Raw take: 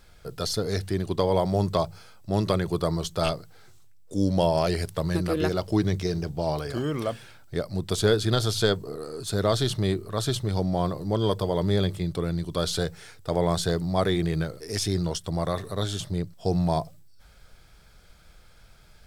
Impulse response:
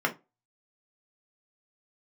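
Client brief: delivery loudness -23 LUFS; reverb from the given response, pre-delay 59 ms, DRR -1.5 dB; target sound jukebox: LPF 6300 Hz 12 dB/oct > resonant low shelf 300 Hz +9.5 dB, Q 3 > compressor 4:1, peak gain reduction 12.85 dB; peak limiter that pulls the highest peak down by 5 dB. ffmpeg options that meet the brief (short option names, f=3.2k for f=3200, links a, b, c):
-filter_complex "[0:a]alimiter=limit=-13.5dB:level=0:latency=1,asplit=2[a][b];[1:a]atrim=start_sample=2205,adelay=59[c];[b][c]afir=irnorm=-1:irlink=0,volume=-10dB[d];[a][d]amix=inputs=2:normalize=0,lowpass=6.3k,lowshelf=f=300:t=q:w=3:g=9.5,acompressor=threshold=-20dB:ratio=4,volume=0.5dB"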